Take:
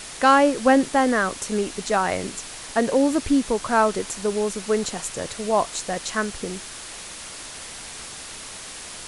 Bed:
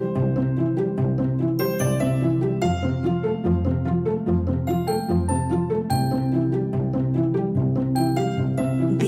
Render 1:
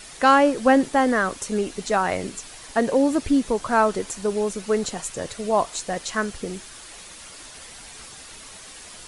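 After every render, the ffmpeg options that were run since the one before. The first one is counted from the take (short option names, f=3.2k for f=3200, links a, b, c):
-af "afftdn=nr=7:nf=-38"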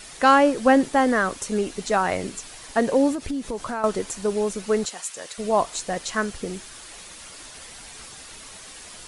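-filter_complex "[0:a]asettb=1/sr,asplit=3[a][b][c];[a]atrim=end=3.124[d];[b]atrim=start=3.12:end=3.84,asetpts=PTS-STARTPTS,afade=t=in:d=0.004:c=qsin,afade=t=out:st=0.716:d=0.004:c=qsin,acompressor=threshold=-25dB:ratio=6:attack=3.2:release=140:knee=1:detection=peak[e];[c]atrim=start=3.836[f];[d][e]acrossfade=d=0.004:c1=hsin:c2=qsin[g];[g][f]acrossfade=d=0.004:c1=qsin:c2=hsin,asettb=1/sr,asplit=3[h][i][j];[h]atrim=end=4.854[k];[i]atrim=start=4.85:end=5.38,asetpts=PTS-STARTPTS,afade=t=in:d=0.004:c=qsin,afade=t=out:st=0.526:d=0.004:c=qsin,highpass=f=1.3k:p=1[l];[j]atrim=start=5.376[m];[k][l]acrossfade=d=0.004:c1=hsin:c2=qsin[n];[n][m]acrossfade=d=0.004:c1=qsin:c2=hsin"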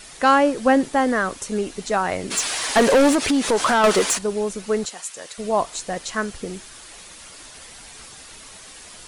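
-filter_complex "[0:a]asplit=3[a][b][c];[a]afade=t=out:st=2.3:d=0.02[d];[b]asplit=2[e][f];[f]highpass=f=720:p=1,volume=25dB,asoftclip=type=tanh:threshold=-7.5dB[g];[e][g]amix=inputs=2:normalize=0,lowpass=f=6.6k:p=1,volume=-6dB,afade=t=in:st=2.3:d=0.02,afade=t=out:st=4.17:d=0.02[h];[c]afade=t=in:st=4.17:d=0.02[i];[d][h][i]amix=inputs=3:normalize=0"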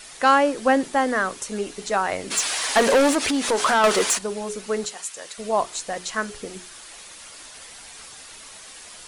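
-af "lowshelf=f=310:g=-7,bandreject=f=60:t=h:w=6,bandreject=f=120:t=h:w=6,bandreject=f=180:t=h:w=6,bandreject=f=240:t=h:w=6,bandreject=f=300:t=h:w=6,bandreject=f=360:t=h:w=6,bandreject=f=420:t=h:w=6"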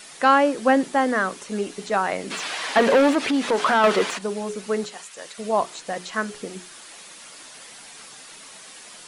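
-filter_complex "[0:a]acrossover=split=4000[a][b];[b]acompressor=threshold=-40dB:ratio=4:attack=1:release=60[c];[a][c]amix=inputs=2:normalize=0,lowshelf=f=110:t=q:w=1.5:g=-12.5"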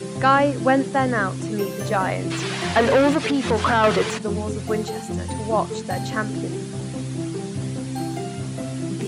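-filter_complex "[1:a]volume=-6.5dB[a];[0:a][a]amix=inputs=2:normalize=0"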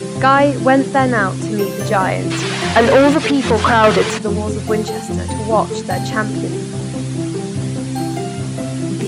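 -af "volume=6.5dB,alimiter=limit=-1dB:level=0:latency=1"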